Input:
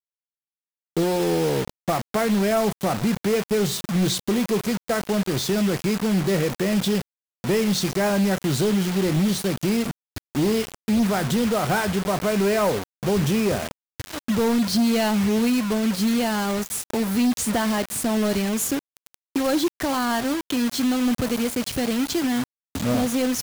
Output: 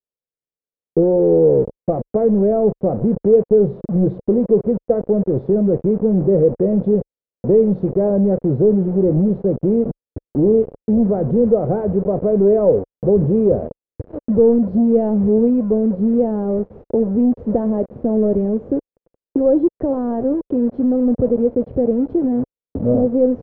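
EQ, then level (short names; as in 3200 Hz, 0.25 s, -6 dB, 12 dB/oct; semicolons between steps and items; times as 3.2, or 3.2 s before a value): synth low-pass 500 Hz, resonance Q 3.5; air absorption 120 m; tilt -1.5 dB/oct; 0.0 dB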